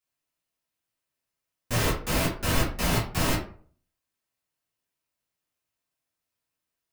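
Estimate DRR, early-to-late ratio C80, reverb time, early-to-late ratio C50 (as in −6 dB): −7.5 dB, 11.5 dB, 0.45 s, 7.0 dB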